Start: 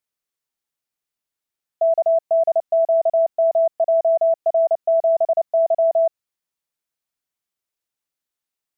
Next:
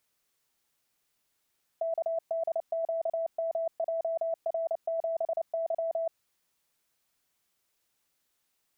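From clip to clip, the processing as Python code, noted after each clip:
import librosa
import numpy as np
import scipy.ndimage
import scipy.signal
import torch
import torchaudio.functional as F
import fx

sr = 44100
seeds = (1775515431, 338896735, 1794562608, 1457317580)

y = fx.over_compress(x, sr, threshold_db=-28.0, ratio=-1.0)
y = y * librosa.db_to_amplitude(-2.5)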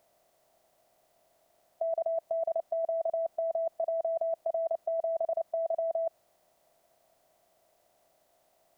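y = fx.bin_compress(x, sr, power=0.6)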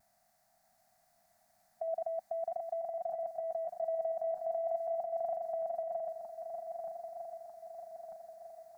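y = fx.reverse_delay_fb(x, sr, ms=625, feedback_pct=73, wet_db=-6.0)
y = fx.vibrato(y, sr, rate_hz=0.45, depth_cents=13.0)
y = fx.curve_eq(y, sr, hz=(150.0, 220.0, 340.0, 490.0, 740.0, 1000.0, 1700.0, 3100.0, 4400.0), db=(0, 3, -21, -22, 3, -6, 4, -10, 1))
y = y * librosa.db_to_amplitude(-2.0)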